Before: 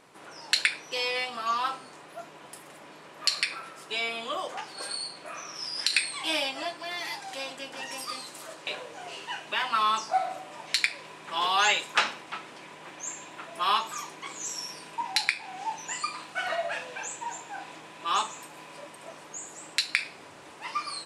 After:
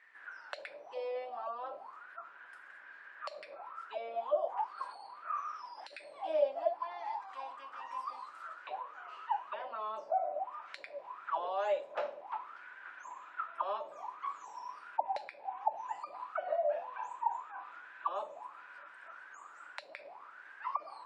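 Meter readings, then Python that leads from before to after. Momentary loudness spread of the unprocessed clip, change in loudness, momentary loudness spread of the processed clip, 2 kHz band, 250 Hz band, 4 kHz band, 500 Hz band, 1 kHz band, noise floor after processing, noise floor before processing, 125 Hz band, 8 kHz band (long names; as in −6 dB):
19 LU, −9.5 dB, 16 LU, −17.0 dB, −17.5 dB, −26.5 dB, +1.5 dB, −6.0 dB, −55 dBFS, −49 dBFS, below −25 dB, below −30 dB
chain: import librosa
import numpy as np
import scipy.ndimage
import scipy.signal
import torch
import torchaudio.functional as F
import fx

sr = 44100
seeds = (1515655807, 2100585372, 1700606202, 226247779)

y = fx.spec_gate(x, sr, threshold_db=-30, keep='strong')
y = fx.auto_wah(y, sr, base_hz=580.0, top_hz=1900.0, q=13.0, full_db=-28.0, direction='down')
y = F.gain(torch.from_numpy(y), 10.0).numpy()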